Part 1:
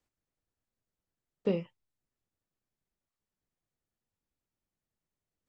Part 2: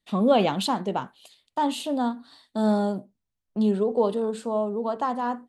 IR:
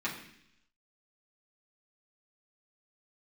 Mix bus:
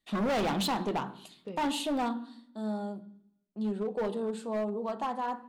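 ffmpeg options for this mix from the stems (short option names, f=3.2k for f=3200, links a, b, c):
-filter_complex "[0:a]volume=-12.5dB[a];[1:a]volume=5.5dB,afade=t=out:st=2.06:d=0.36:silence=0.237137,afade=t=in:st=3.53:d=0.7:silence=0.398107,asplit=2[b][c];[c]volume=-12dB[d];[2:a]atrim=start_sample=2205[e];[d][e]afir=irnorm=-1:irlink=0[f];[a][b][f]amix=inputs=3:normalize=0,asoftclip=type=hard:threshold=-26.5dB"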